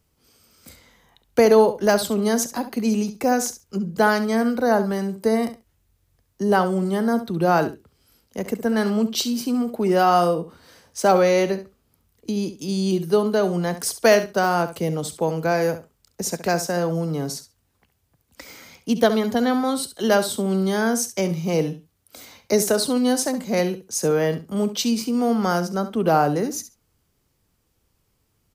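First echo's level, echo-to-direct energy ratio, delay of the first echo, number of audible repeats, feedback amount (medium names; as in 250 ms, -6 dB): -12.5 dB, -12.5 dB, 68 ms, 2, 15%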